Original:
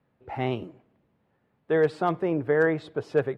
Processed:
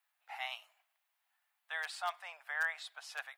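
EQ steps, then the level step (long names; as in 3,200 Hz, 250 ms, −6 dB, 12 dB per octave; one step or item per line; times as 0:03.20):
elliptic high-pass filter 710 Hz, stop band 50 dB
first difference
+8.0 dB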